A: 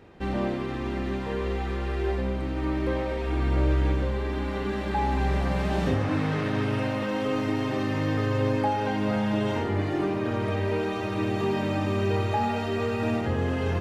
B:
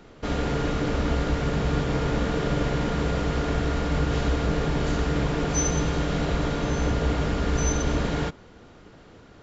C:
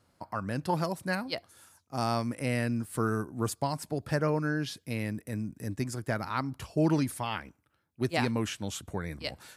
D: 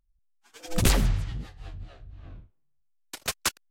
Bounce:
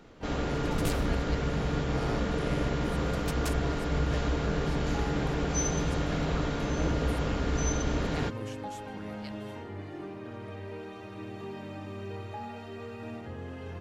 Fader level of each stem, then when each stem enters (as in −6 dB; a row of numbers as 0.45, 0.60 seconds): −14.0, −5.0, −12.5, −12.5 decibels; 0.00, 0.00, 0.00, 0.00 seconds